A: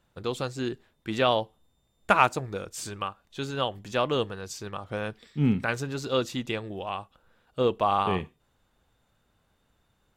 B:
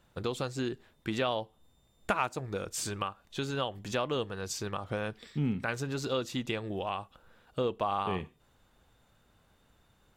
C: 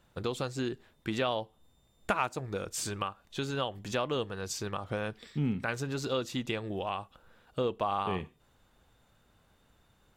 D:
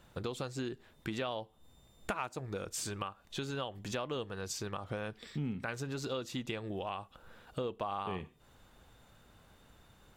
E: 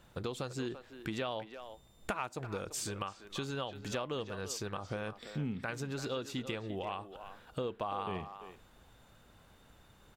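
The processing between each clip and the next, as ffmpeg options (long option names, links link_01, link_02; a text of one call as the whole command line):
ffmpeg -i in.wav -af "acompressor=threshold=-36dB:ratio=2.5,volume=3.5dB" out.wav
ffmpeg -i in.wav -af anull out.wav
ffmpeg -i in.wav -af "acompressor=threshold=-48dB:ratio=2,volume=5dB" out.wav
ffmpeg -i in.wav -filter_complex "[0:a]asplit=2[link_01][link_02];[link_02]adelay=340,highpass=300,lowpass=3400,asoftclip=type=hard:threshold=-28.5dB,volume=-10dB[link_03];[link_01][link_03]amix=inputs=2:normalize=0" out.wav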